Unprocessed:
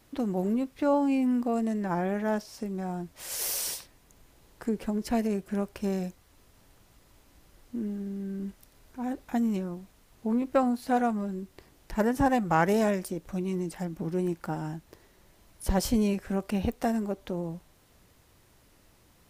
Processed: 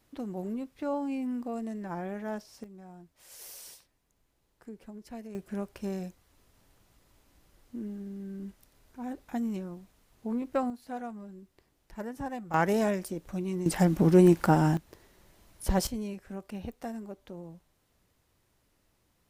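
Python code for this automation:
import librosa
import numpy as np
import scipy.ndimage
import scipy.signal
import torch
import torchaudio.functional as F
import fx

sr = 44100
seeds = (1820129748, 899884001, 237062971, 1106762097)

y = fx.gain(x, sr, db=fx.steps((0.0, -7.5), (2.64, -15.5), (5.35, -5.0), (10.7, -12.5), (12.54, -2.0), (13.66, 10.5), (14.77, -0.5), (15.87, -10.5)))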